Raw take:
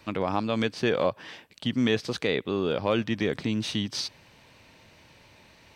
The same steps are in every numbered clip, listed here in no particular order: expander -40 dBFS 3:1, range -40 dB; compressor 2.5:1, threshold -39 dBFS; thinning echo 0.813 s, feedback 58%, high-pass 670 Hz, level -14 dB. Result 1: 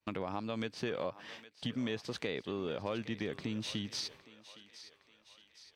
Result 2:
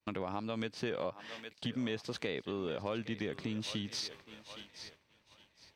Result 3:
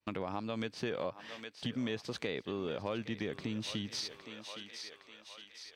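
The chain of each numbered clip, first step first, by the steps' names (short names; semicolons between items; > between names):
expander > compressor > thinning echo; thinning echo > expander > compressor; expander > thinning echo > compressor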